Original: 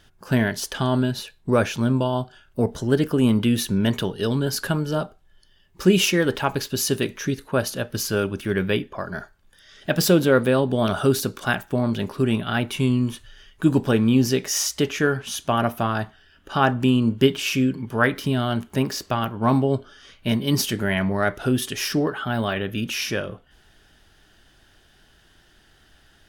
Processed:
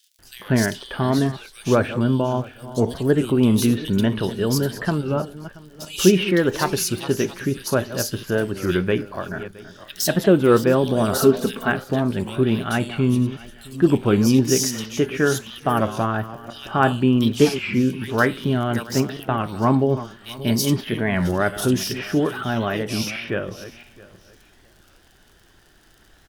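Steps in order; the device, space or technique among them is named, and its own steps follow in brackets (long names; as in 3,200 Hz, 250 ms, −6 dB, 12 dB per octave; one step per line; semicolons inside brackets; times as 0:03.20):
feedback delay that plays each chunk backwards 333 ms, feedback 41%, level −14 dB
warped LP (wow of a warped record 33 1/3 rpm, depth 160 cents; surface crackle 57 per second −40 dBFS; pink noise bed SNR 44 dB)
0:10.99–0:11.51: comb filter 4.5 ms, depth 67%
parametric band 360 Hz +2.5 dB 0.41 octaves
multiband delay without the direct sound highs, lows 190 ms, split 3,000 Hz
level +1 dB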